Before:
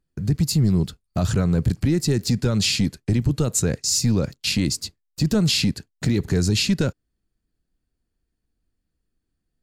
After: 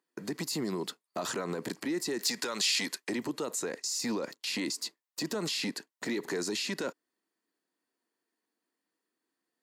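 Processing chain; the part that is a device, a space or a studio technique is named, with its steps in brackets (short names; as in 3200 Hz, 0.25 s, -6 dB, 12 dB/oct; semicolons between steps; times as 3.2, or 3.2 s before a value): laptop speaker (HPF 290 Hz 24 dB/oct; bell 1000 Hz +9 dB 0.41 oct; bell 1900 Hz +6.5 dB 0.23 oct; limiter -25 dBFS, peak gain reduction 13.5 dB); 2.19–3.1 tilt shelf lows -6.5 dB, about 770 Hz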